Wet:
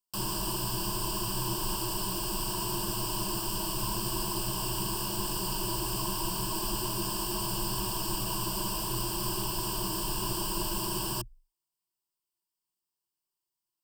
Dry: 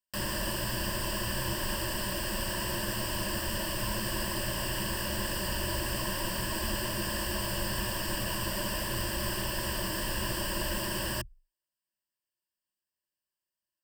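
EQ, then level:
phaser with its sweep stopped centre 370 Hz, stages 8
+3.0 dB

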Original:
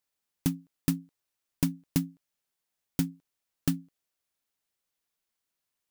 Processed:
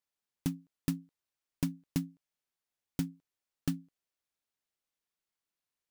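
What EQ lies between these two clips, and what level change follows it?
high-shelf EQ 8,800 Hz −6 dB
−5.0 dB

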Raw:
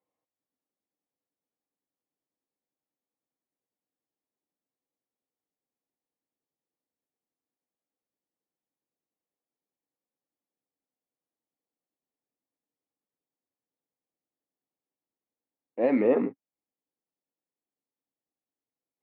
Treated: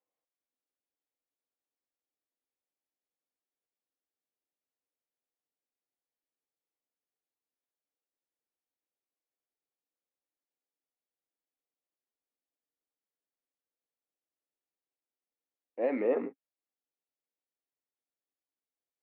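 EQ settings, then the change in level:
Bessel high-pass filter 450 Hz, order 2
high-frequency loss of the air 270 metres
parametric band 1,000 Hz −3.5 dB
−1.5 dB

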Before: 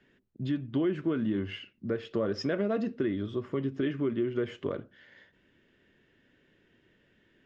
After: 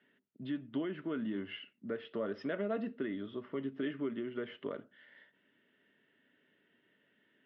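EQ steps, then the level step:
loudspeaker in its box 350–2,900 Hz, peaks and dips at 350 Hz −10 dB, 510 Hz −9 dB, 770 Hz −8 dB, 1,100 Hz −8 dB, 1,600 Hz −6 dB, 2,400 Hz −9 dB
+2.5 dB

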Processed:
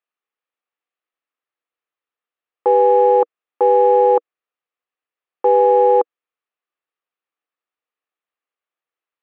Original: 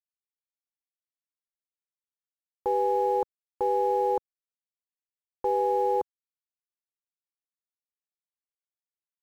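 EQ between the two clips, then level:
loudspeaker in its box 300–3,400 Hz, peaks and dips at 320 Hz +4 dB, 480 Hz +7 dB, 740 Hz +4 dB, 1,200 Hz +9 dB, 1,800 Hz +4 dB, 2,600 Hz +4 dB
+7.5 dB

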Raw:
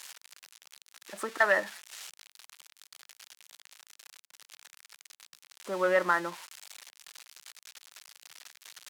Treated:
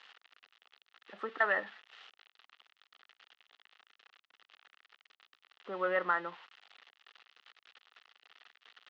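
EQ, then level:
loudspeaker in its box 300–2,800 Hz, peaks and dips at 340 Hz −8 dB, 600 Hz −10 dB, 960 Hz −9 dB, 1,600 Hz −6 dB, 2,300 Hz −10 dB
+1.5 dB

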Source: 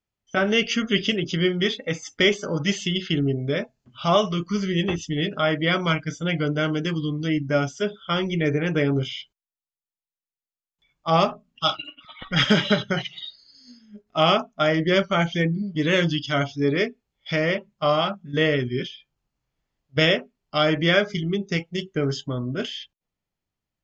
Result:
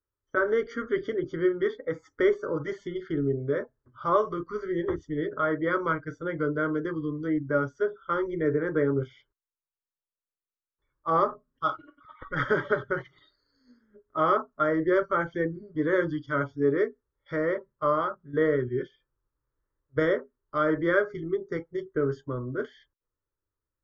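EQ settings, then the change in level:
Savitzky-Golay smoothing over 41 samples
phaser with its sweep stopped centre 730 Hz, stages 6
0.0 dB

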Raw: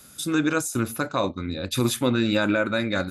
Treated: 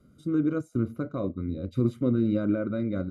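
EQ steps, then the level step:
moving average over 51 samples
0.0 dB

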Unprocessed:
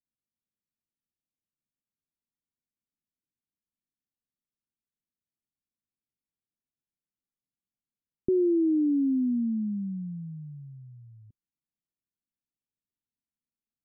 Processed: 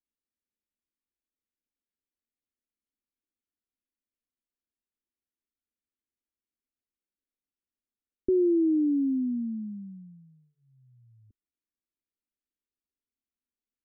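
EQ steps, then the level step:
dynamic equaliser 170 Hz, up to −4 dB, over −41 dBFS, Q 1.1
high-frequency loss of the air 440 metres
phaser with its sweep stopped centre 350 Hz, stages 4
+2.5 dB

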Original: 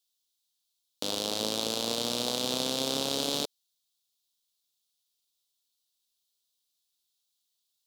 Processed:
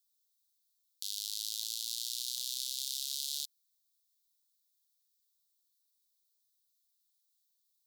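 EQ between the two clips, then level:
inverse Chebyshev high-pass filter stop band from 860 Hz, stop band 70 dB
high-shelf EQ 12,000 Hz +11 dB
−4.5 dB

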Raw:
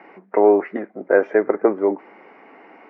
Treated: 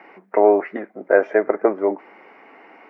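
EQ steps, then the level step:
dynamic equaliser 640 Hz, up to +7 dB, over −33 dBFS, Q 5
spectral tilt +1.5 dB per octave
0.0 dB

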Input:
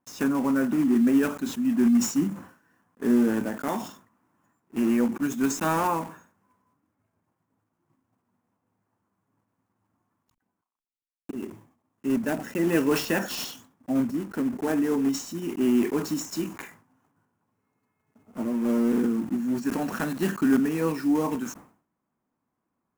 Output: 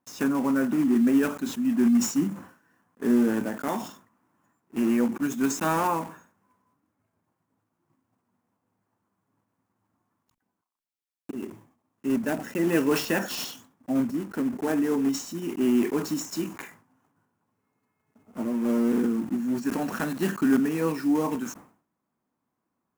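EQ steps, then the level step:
low-shelf EQ 62 Hz −6.5 dB
0.0 dB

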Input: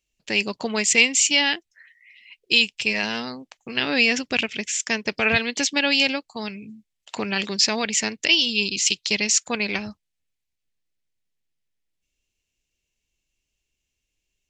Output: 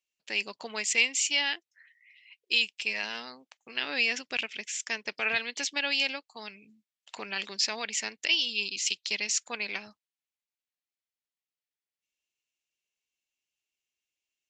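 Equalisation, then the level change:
high-pass filter 860 Hz 6 dB per octave
high-shelf EQ 7,800 Hz −6.5 dB
−6.5 dB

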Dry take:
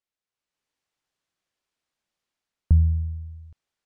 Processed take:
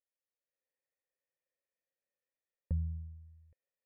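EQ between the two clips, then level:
formant resonators in series e
dynamic equaliser 250 Hz, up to +7 dB, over −55 dBFS, Q 0.75
+2.0 dB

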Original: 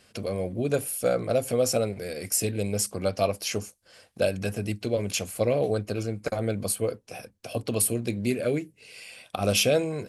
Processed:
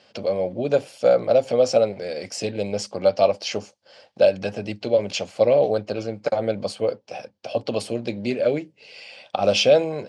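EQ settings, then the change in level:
loudspeaker in its box 140–5,900 Hz, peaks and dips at 570 Hz +9 dB, 840 Hz +9 dB, 3,100 Hz +4 dB, 4,700 Hz +4 dB
+1.0 dB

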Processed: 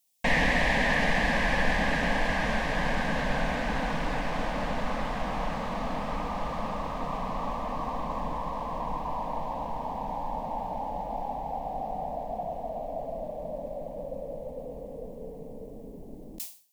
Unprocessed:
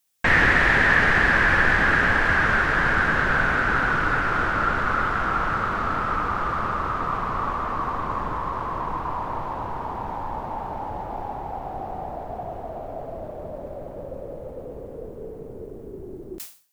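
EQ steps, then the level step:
phaser with its sweep stopped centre 370 Hz, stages 6
0.0 dB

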